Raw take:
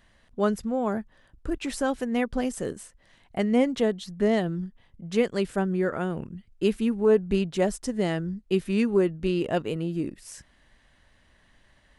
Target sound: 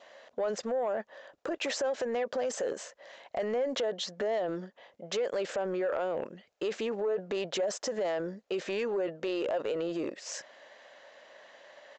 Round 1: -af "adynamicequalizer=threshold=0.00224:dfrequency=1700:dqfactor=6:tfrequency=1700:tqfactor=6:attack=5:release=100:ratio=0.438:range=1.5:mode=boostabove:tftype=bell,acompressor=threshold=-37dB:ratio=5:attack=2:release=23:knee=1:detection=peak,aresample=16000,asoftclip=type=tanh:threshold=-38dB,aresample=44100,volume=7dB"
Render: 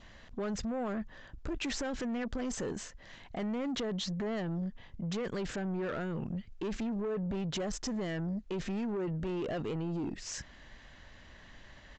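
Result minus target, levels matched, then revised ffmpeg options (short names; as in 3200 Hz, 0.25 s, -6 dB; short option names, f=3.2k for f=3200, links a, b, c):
soft clip: distortion +12 dB; 500 Hz band -4.5 dB
-af "adynamicequalizer=threshold=0.00224:dfrequency=1700:dqfactor=6:tfrequency=1700:tqfactor=6:attack=5:release=100:ratio=0.438:range=1.5:mode=boostabove:tftype=bell,highpass=f=560:t=q:w=4.1,acompressor=threshold=-37dB:ratio=5:attack=2:release=23:knee=1:detection=peak,aresample=16000,asoftclip=type=tanh:threshold=-28.5dB,aresample=44100,volume=7dB"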